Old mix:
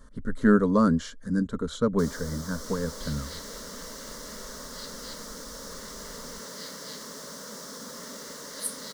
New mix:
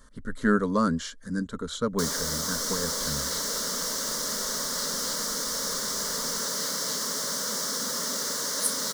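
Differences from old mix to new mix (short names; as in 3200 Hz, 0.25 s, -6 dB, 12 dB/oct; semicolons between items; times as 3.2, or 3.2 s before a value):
first sound +9.0 dB; master: add tilt shelf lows -4.5 dB, about 1100 Hz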